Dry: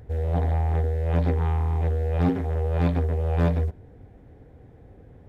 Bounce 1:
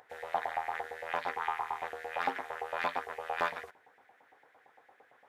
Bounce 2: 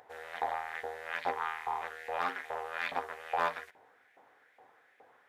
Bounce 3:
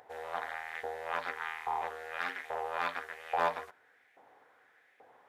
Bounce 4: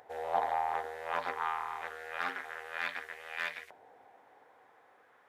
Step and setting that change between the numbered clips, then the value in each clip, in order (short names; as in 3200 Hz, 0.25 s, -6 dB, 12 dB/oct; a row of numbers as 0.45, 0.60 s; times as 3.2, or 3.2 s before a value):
LFO high-pass, rate: 8.8, 2.4, 1.2, 0.27 Hz